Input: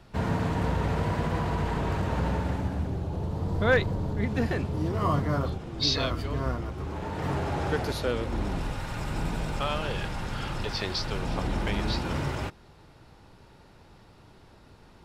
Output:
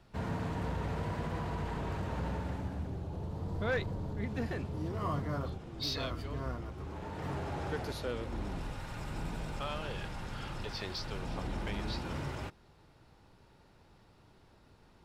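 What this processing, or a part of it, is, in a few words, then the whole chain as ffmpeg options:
saturation between pre-emphasis and de-emphasis: -af "highshelf=f=3.2k:g=10,asoftclip=type=tanh:threshold=-15dB,highshelf=f=3.2k:g=-10,volume=-8dB"

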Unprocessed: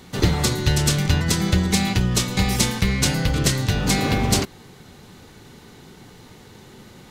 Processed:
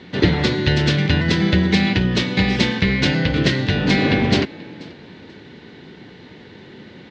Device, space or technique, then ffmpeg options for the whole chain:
frequency-shifting delay pedal into a guitar cabinet: -filter_complex "[0:a]asplit=3[a][b][c];[b]adelay=484,afreqshift=72,volume=-22.5dB[d];[c]adelay=968,afreqshift=144,volume=-32.7dB[e];[a][d][e]amix=inputs=3:normalize=0,highpass=99,equalizer=f=120:t=q:w=4:g=-5,equalizer=f=310:t=q:w=4:g=3,equalizer=f=800:t=q:w=4:g=-5,equalizer=f=1.2k:t=q:w=4:g=-8,equalizer=f=1.8k:t=q:w=4:g=4,lowpass=f=4k:w=0.5412,lowpass=f=4k:w=1.3066,volume=5dB"

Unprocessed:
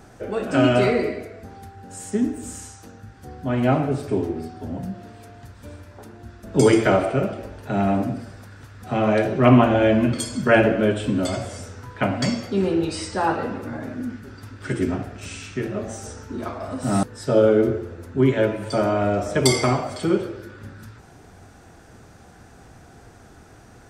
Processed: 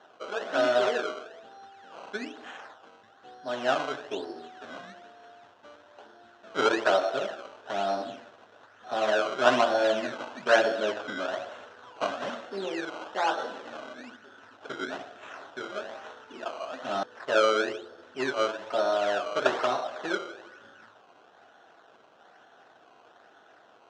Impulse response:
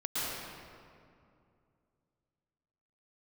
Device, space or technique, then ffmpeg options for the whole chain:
circuit-bent sampling toy: -filter_complex "[0:a]acrusher=samples=17:mix=1:aa=0.000001:lfo=1:lforange=17:lforate=1.1,highpass=570,equalizer=f=640:t=q:w=4:g=4,equalizer=f=1.5k:t=q:w=4:g=4,equalizer=f=2.2k:t=q:w=4:g=-9,equalizer=f=4.7k:t=q:w=4:g=-9,lowpass=f=5.2k:w=0.5412,lowpass=f=5.2k:w=1.3066,asettb=1/sr,asplit=3[a][b][c];[a]atrim=end=10.804[d];[b]atrim=start=10.8:end=11.3,asetpts=PTS-STARTPTS,afade=t=in:d=0.004:c=qsin,afade=t=out:st=0.496:d=0.004:c=qsin,lowpass=8.7k[e];[c]atrim=start=11.296[f];[d][e]acrossfade=d=0.004:c1=hsin:c2=qsin[g];[g][f]acrossfade=d=0.004:c1=qsin:c2=hsin,volume=-4dB"

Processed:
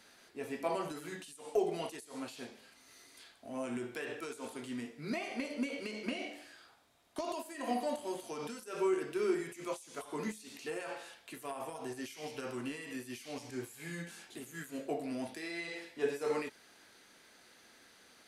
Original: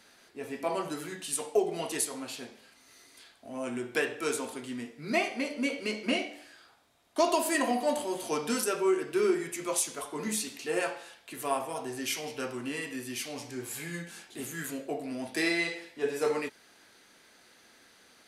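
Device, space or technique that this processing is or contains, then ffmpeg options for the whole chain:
de-esser from a sidechain: -filter_complex "[0:a]asplit=2[a][b];[b]highpass=5.4k,apad=whole_len=805765[c];[a][c]sidechaincompress=threshold=-49dB:ratio=10:attack=3.2:release=75,volume=-2dB"

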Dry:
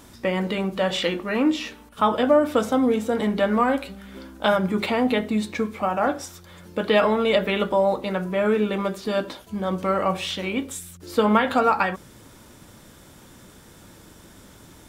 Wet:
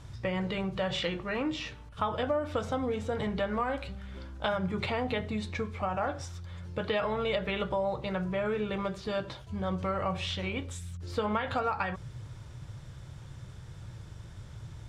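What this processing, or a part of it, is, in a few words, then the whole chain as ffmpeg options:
jukebox: -af "lowpass=6.2k,lowshelf=f=170:t=q:w=3:g=10.5,acompressor=threshold=-22dB:ratio=3,volume=-5.5dB"

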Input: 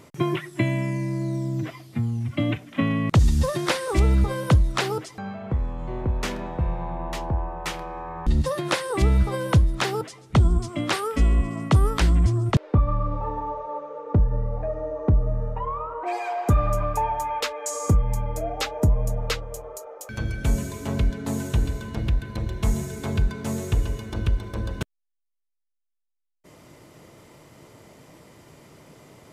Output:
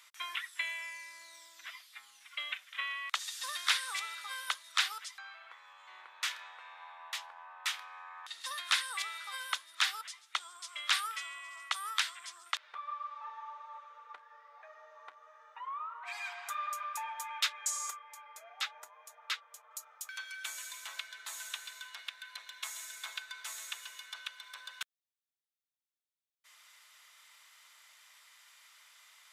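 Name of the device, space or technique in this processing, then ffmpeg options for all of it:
headphones lying on a table: -filter_complex "[0:a]highpass=f=1.3k:w=0.5412,highpass=f=1.3k:w=1.3066,equalizer=f=3.6k:t=o:w=0.3:g=6,asettb=1/sr,asplit=3[a][b][c];[a]atrim=end=17.994[d];[b]atrim=start=17.99:end=19.71,asetpts=PTS-STARTPTS,afade=t=in:d=0.004:c=qsin,afade=t=out:st=1.716:d=0.004:c=qsin,highshelf=f=2.9k:g=-10[e];[c]atrim=start=19.706[f];[d][e]acrossfade=d=0.004:c1=hsin:c2=qsin[g];[g][f]acrossfade=d=0.004:c1=qsin:c2=hsin,volume=-3dB"

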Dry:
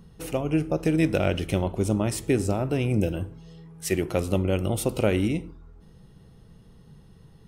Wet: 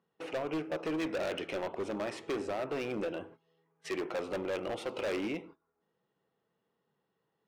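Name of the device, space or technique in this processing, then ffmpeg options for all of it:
walkie-talkie: -af "highpass=460,lowpass=2.6k,asoftclip=type=hard:threshold=-30.5dB,agate=range=-16dB:threshold=-52dB:ratio=16:detection=peak"

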